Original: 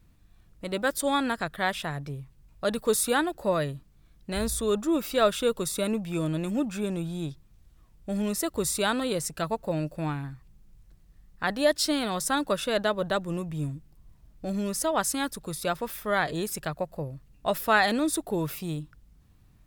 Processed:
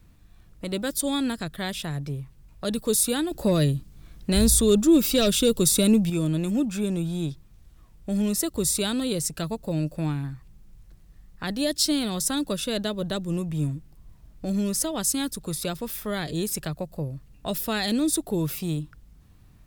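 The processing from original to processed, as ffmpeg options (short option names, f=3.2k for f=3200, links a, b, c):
-filter_complex "[0:a]asettb=1/sr,asplit=3[a][b][c];[a]atrim=end=3.314[d];[b]atrim=start=3.31:end=6.1,asetpts=PTS-STARTPTS,afade=t=in:d=0.004:c=qsin,afade=t=out:st=2.786:d=0.004:c=qsin,aeval=exprs='0.299*sin(PI/2*1.41*val(0)/0.299)':c=same[e];[c]atrim=start=6.096[f];[d][e]acrossfade=d=0.004:c1=hsin:c2=qsin[g];[g][f]acrossfade=d=0.004:c1=qsin:c2=hsin,acrossover=split=390|3000[h][i][j];[i]acompressor=threshold=-47dB:ratio=2.5[k];[h][k][j]amix=inputs=3:normalize=0,volume=5dB"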